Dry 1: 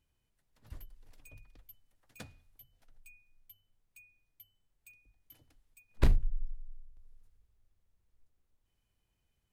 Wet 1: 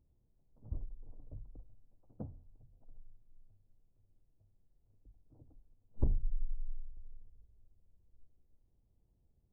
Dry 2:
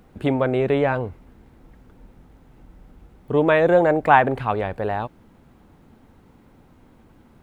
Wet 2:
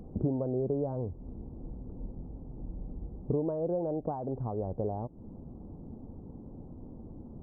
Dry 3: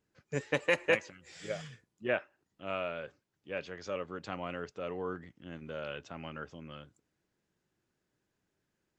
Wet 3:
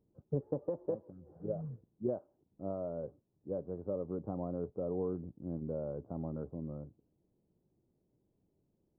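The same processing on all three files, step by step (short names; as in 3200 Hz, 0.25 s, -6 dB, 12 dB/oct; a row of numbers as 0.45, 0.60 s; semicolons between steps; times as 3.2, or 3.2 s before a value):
compressor 5:1, threshold -35 dBFS; Gaussian blur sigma 13 samples; gain +7.5 dB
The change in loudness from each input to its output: -7.0, -15.5, -3.5 LU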